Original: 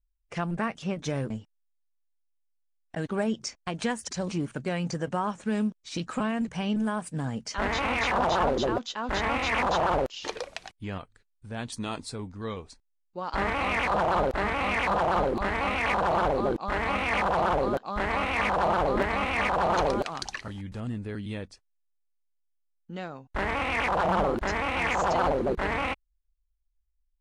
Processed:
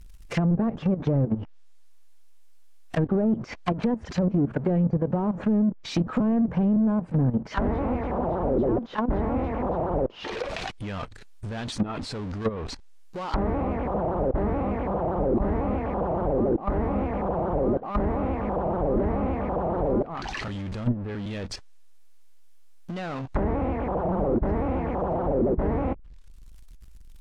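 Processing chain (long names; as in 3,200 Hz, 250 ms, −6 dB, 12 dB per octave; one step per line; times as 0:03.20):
power curve on the samples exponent 0.5
output level in coarse steps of 12 dB
treble cut that deepens with the level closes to 490 Hz, closed at −23.5 dBFS
level +4 dB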